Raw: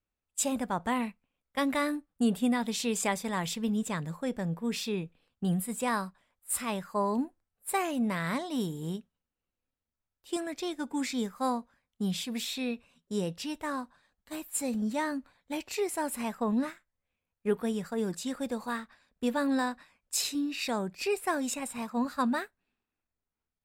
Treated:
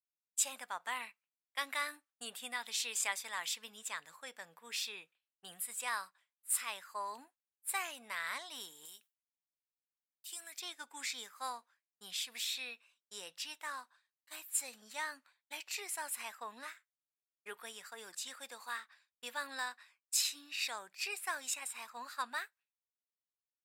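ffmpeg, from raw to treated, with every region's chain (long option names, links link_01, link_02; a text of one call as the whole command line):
ffmpeg -i in.wav -filter_complex "[0:a]asettb=1/sr,asplit=3[link_01][link_02][link_03];[link_01]atrim=end=8.854[link_04];[link_02]atrim=start=8.85:end=10.61,asetpts=PTS-STARTPTS,afade=type=in:duration=0.004:curve=qsin,afade=type=out:start_time=1.756:duration=0.004:curve=qsin,aemphasis=mode=production:type=75kf,bandreject=frequency=50:width_type=h:width=6,bandreject=frequency=100:width_type=h:width=6,bandreject=frequency=150:width_type=h:width=6,acompressor=threshold=-43dB:ratio=2.5:attack=3.2:release=140:knee=1:detection=peak[link_05];[link_03]atrim=start=10.606[link_06];[link_04][link_05]acrossfade=duration=0.004:curve1=hsin:curve2=qsin[link_07];[link_07][link_06]acrossfade=duration=0.004:curve1=qsin:curve2=hsin,highpass=1400,agate=range=-33dB:threshold=-60dB:ratio=3:detection=peak,volume=-1.5dB" out.wav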